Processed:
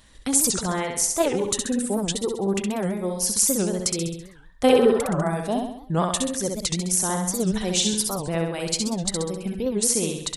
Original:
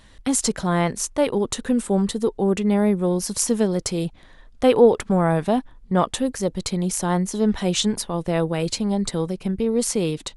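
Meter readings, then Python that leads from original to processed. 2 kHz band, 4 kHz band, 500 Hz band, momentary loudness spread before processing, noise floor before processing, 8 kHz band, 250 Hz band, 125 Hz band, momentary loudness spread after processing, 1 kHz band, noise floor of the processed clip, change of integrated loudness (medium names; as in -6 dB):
-1.0 dB, +2.0 dB, -3.0 dB, 5 LU, -49 dBFS, +5.0 dB, -4.0 dB, -4.0 dB, 7 LU, -2.5 dB, -46 dBFS, -1.0 dB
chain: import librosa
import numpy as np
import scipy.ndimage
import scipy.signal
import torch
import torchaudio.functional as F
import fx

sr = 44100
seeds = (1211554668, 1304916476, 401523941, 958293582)

p1 = fx.spec_repair(x, sr, seeds[0], start_s=4.71, length_s=0.5, low_hz=460.0, high_hz=2000.0, source='both')
p2 = fx.level_steps(p1, sr, step_db=16)
p3 = p1 + (p2 * librosa.db_to_amplitude(1.0))
p4 = fx.dereverb_blind(p3, sr, rt60_s=1.4)
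p5 = fx.high_shelf(p4, sr, hz=5100.0, db=9.5)
p6 = p5 + fx.echo_feedback(p5, sr, ms=66, feedback_pct=52, wet_db=-4, dry=0)
p7 = fx.record_warp(p6, sr, rpm=78.0, depth_cents=250.0)
y = p7 * librosa.db_to_amplitude(-6.5)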